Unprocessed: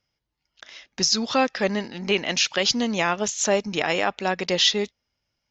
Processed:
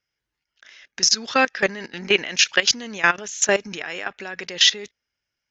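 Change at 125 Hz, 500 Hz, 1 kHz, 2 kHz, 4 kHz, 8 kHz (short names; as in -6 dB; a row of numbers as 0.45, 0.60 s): -6.0 dB, -1.5 dB, -0.5 dB, +5.5 dB, +3.0 dB, n/a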